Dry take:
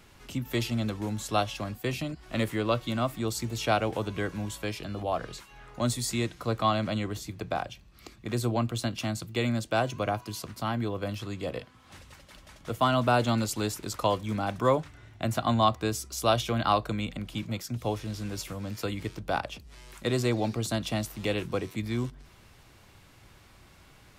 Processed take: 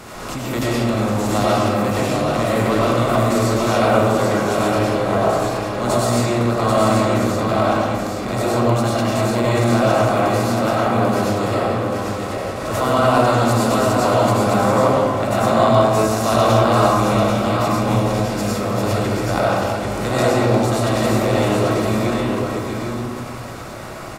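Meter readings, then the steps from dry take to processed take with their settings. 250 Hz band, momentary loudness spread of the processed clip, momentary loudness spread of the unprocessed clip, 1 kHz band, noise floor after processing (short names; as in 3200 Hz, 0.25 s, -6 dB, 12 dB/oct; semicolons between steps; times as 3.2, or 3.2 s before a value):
+13.0 dB, 8 LU, 10 LU, +13.0 dB, -29 dBFS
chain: per-bin compression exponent 0.6; bell 3200 Hz -5.5 dB 0.6 oct; on a send: echo 0.789 s -4.5 dB; on the sum: digital reverb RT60 1.9 s, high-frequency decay 0.4×, pre-delay 60 ms, DRR -7 dB; backwards sustainer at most 39 dB/s; gain -1 dB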